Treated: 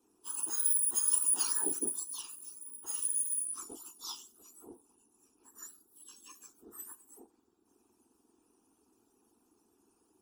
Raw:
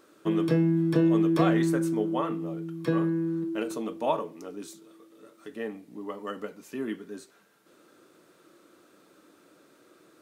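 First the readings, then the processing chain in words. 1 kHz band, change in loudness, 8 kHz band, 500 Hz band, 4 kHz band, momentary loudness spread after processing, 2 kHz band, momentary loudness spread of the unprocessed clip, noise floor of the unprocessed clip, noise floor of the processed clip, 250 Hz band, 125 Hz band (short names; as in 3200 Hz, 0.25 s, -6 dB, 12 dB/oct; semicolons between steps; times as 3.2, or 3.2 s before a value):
-18.0 dB, -2.5 dB, +19.5 dB, -24.0 dB, -1.5 dB, 21 LU, -17.0 dB, 18 LU, -61 dBFS, -73 dBFS, -27.0 dB, under -40 dB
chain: spectrum mirrored in octaves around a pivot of 1800 Hz; low shelf 290 Hz +5 dB; whisperiser; fixed phaser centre 570 Hz, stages 6; upward expander 1.5:1, over -41 dBFS; gain -1 dB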